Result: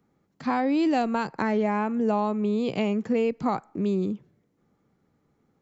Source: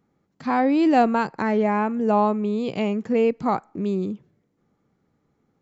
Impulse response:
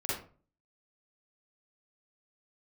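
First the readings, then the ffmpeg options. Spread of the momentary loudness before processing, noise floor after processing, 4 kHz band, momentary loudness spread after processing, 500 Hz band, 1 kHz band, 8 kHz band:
9 LU, -71 dBFS, -1.0 dB, 6 LU, -4.0 dB, -5.5 dB, no reading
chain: -filter_complex "[0:a]acrossover=split=140|3000[s0][s1][s2];[s1]acompressor=threshold=0.0891:ratio=6[s3];[s0][s3][s2]amix=inputs=3:normalize=0"

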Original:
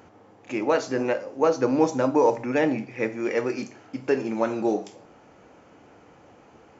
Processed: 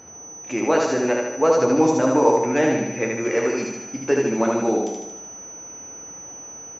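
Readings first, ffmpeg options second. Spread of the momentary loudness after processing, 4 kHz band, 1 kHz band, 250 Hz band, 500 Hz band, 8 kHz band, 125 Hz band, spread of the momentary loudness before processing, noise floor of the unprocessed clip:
18 LU, +4.5 dB, +4.5 dB, +4.0 dB, +4.0 dB, no reading, +4.0 dB, 10 LU, -54 dBFS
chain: -filter_complex "[0:a]flanger=delay=8.2:depth=5.6:regen=-62:speed=1.9:shape=triangular,aeval=exprs='val(0)+0.00316*sin(2*PI*6000*n/s)':c=same,asplit=2[s0][s1];[s1]aecho=0:1:76|152|228|304|380|456|532|608:0.708|0.404|0.23|0.131|0.0747|0.0426|0.0243|0.0138[s2];[s0][s2]amix=inputs=2:normalize=0,volume=2"

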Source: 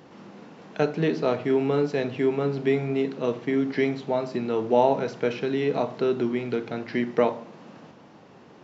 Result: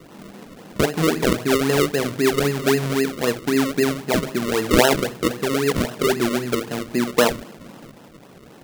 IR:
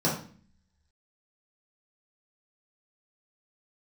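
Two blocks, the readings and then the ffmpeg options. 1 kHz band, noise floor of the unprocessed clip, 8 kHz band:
+4.0 dB, -50 dBFS, no reading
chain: -af "afftfilt=real='re*(1-between(b*sr/4096,1300,4000))':imag='im*(1-between(b*sr/4096,1300,4000))':win_size=4096:overlap=0.75,acrusher=samples=37:mix=1:aa=0.000001:lfo=1:lforange=37:lforate=3.8,adynamicequalizer=threshold=0.01:dfrequency=750:dqfactor=1.8:tfrequency=750:tqfactor=1.8:attack=5:release=100:ratio=0.375:range=2:mode=cutabove:tftype=bell,volume=1.78"

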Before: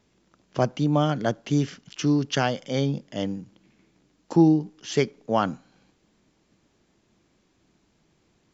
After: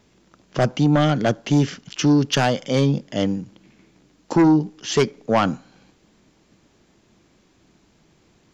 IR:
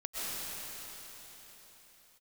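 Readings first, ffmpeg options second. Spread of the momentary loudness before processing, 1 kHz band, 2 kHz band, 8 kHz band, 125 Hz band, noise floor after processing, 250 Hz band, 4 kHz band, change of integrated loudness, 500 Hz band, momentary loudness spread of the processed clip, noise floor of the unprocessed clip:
11 LU, +4.5 dB, +6.0 dB, no reading, +5.0 dB, -60 dBFS, +4.5 dB, +6.5 dB, +4.5 dB, +4.5 dB, 8 LU, -67 dBFS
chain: -af "aeval=exprs='0.473*(cos(1*acos(clip(val(0)/0.473,-1,1)))-cos(1*PI/2))+0.133*(cos(5*acos(clip(val(0)/0.473,-1,1)))-cos(5*PI/2))':c=same"

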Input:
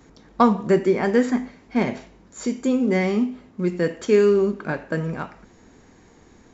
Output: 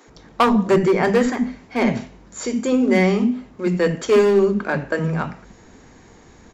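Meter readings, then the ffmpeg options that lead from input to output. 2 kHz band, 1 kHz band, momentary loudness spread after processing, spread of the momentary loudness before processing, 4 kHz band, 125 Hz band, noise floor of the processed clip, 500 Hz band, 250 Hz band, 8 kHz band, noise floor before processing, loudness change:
+5.0 dB, +3.0 dB, 10 LU, 12 LU, +6.5 dB, +4.0 dB, -48 dBFS, +2.5 dB, +2.5 dB, no reading, -52 dBFS, +2.5 dB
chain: -filter_complex "[0:a]volume=4.73,asoftclip=hard,volume=0.211,acrossover=split=290[s0][s1];[s0]adelay=70[s2];[s2][s1]amix=inputs=2:normalize=0,volume=1.88"

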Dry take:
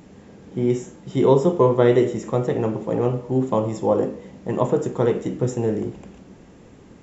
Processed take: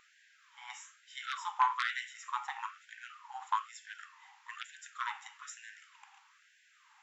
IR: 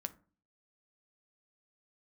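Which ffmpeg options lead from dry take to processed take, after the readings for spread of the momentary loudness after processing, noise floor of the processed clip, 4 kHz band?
20 LU, -67 dBFS, no reading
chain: -filter_complex "[0:a]aeval=exprs='0.75*(cos(1*acos(clip(val(0)/0.75,-1,1)))-cos(1*PI/2))+0.0668*(cos(6*acos(clip(val(0)/0.75,-1,1)))-cos(6*PI/2))+0.015*(cos(7*acos(clip(val(0)/0.75,-1,1)))-cos(7*PI/2))+0.0335*(cos(8*acos(clip(val(0)/0.75,-1,1)))-cos(8*PI/2))':c=same,asplit=2[s0][s1];[1:a]atrim=start_sample=2205,lowpass=4500[s2];[s1][s2]afir=irnorm=-1:irlink=0,volume=0.794[s3];[s0][s3]amix=inputs=2:normalize=0,afftfilt=real='re*gte(b*sr/1024,750*pow(1500/750,0.5+0.5*sin(2*PI*1.1*pts/sr)))':imag='im*gte(b*sr/1024,750*pow(1500/750,0.5+0.5*sin(2*PI*1.1*pts/sr)))':win_size=1024:overlap=0.75,volume=0.501"

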